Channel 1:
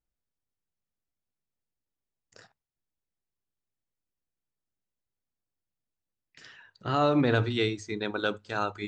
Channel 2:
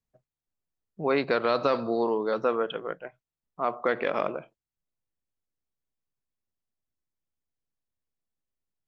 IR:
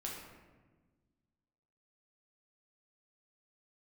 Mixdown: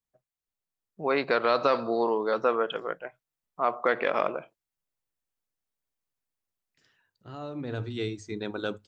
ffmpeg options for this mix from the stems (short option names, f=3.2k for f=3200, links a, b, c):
-filter_complex "[0:a]equalizer=f=1.5k:t=o:w=2.4:g=-5,adelay=400,volume=-4.5dB,afade=t=in:st=7.59:d=0.71:silence=0.251189[a];[1:a]lowshelf=f=410:g=-8.5,volume=-0.5dB[b];[a][b]amix=inputs=2:normalize=0,equalizer=f=4.3k:w=0.57:g=-2.5,dynaudnorm=f=690:g=3:m=4.5dB"